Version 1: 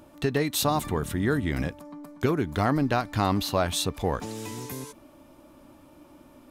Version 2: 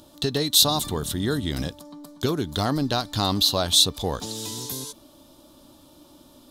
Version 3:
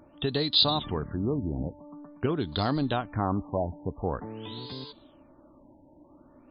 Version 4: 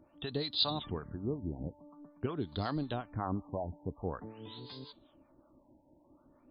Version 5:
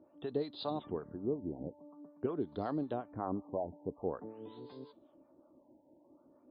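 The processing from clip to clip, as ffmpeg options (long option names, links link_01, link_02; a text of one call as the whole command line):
ffmpeg -i in.wav -af "highshelf=frequency=2900:width_type=q:width=3:gain=8" out.wav
ffmpeg -i in.wav -af "afftfilt=real='re*lt(b*sr/1024,950*pow(5100/950,0.5+0.5*sin(2*PI*0.47*pts/sr)))':imag='im*lt(b*sr/1024,950*pow(5100/950,0.5+0.5*sin(2*PI*0.47*pts/sr)))':win_size=1024:overlap=0.75,volume=-3dB" out.wav
ffmpeg -i in.wav -filter_complex "[0:a]acrossover=split=620[link_01][link_02];[link_01]aeval=exprs='val(0)*(1-0.7/2+0.7/2*cos(2*PI*5.4*n/s))':channel_layout=same[link_03];[link_02]aeval=exprs='val(0)*(1-0.7/2-0.7/2*cos(2*PI*5.4*n/s))':channel_layout=same[link_04];[link_03][link_04]amix=inputs=2:normalize=0,volume=-5dB" out.wav
ffmpeg -i in.wav -af "bandpass=frequency=450:width_type=q:width=0.99:csg=0,volume=3dB" out.wav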